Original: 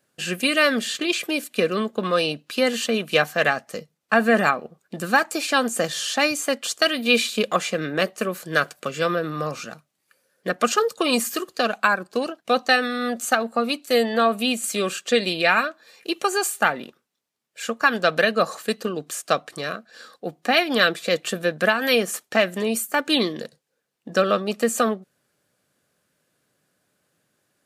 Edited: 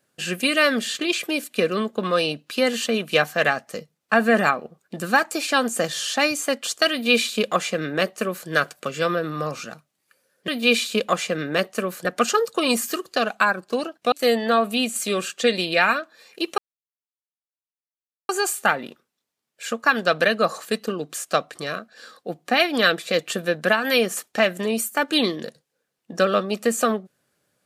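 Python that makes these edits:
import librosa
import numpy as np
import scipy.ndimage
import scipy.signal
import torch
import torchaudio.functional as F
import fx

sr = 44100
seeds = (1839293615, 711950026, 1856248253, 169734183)

y = fx.edit(x, sr, fx.duplicate(start_s=6.91, length_s=1.57, to_s=10.48),
    fx.cut(start_s=12.55, length_s=1.25),
    fx.insert_silence(at_s=16.26, length_s=1.71), tone=tone)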